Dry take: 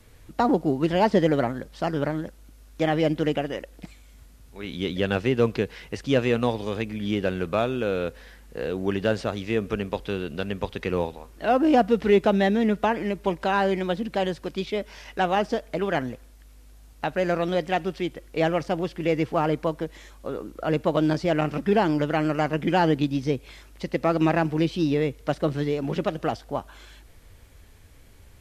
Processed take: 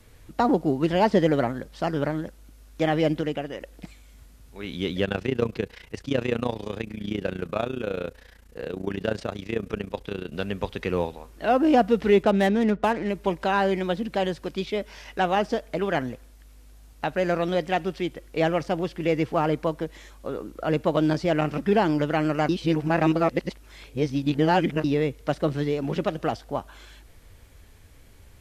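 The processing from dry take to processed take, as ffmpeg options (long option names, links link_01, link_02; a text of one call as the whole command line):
ffmpeg -i in.wav -filter_complex "[0:a]asettb=1/sr,asplit=3[link_01][link_02][link_03];[link_01]atrim=end=5.054[link_04];[link_02]atrim=start=5.05:end=10.33,asetpts=PTS-STARTPTS,afade=type=in:duration=0.004:curve=qsin,afade=type=out:start_time=5.276:duration=0.004:curve=qsin,tremolo=f=29:d=0.857[link_05];[link_03]atrim=start=10.326[link_06];[link_04][link_05]acrossfade=duration=0.004:curve1=hsin:curve2=qsin[link_07];[link_07][link_06]acrossfade=duration=0.004:curve1=qsin:curve2=hsin,asettb=1/sr,asplit=3[link_08][link_09][link_10];[link_08]atrim=end=12.234[link_11];[link_09]atrim=start=12.23:end=13.09,asetpts=PTS-STARTPTS,afade=type=in:duration=0.004:curve=qsin,afade=type=out:start_time=0.856:duration=0.004:curve=qsin,adynamicsmooth=sensitivity=7:basefreq=1400[link_12];[link_10]atrim=start=13.086[link_13];[link_11][link_12]acrossfade=duration=0.004:curve1=hsin:curve2=qsin[link_14];[link_14][link_13]acrossfade=duration=0.004:curve1=qsin:curve2=hsin,asplit=5[link_15][link_16][link_17][link_18][link_19];[link_15]atrim=end=3.212[link_20];[link_16]atrim=start=3.208:end=3.612,asetpts=PTS-STARTPTS,volume=-4dB[link_21];[link_17]atrim=start=3.608:end=22.492[link_22];[link_18]atrim=start=22.488:end=24.842,asetpts=PTS-STARTPTS,areverse[link_23];[link_19]atrim=start=24.838[link_24];[link_20][link_21]acrossfade=duration=0.004:curve1=hsin:curve2=hsin[link_25];[link_25][link_22]acrossfade=duration=0.004:curve1=hsin:curve2=hsin[link_26];[link_26][link_23]acrossfade=duration=0.004:curve1=hsin:curve2=hsin[link_27];[link_27][link_24]acrossfade=duration=0.004:curve1=hsin:curve2=hsin" out.wav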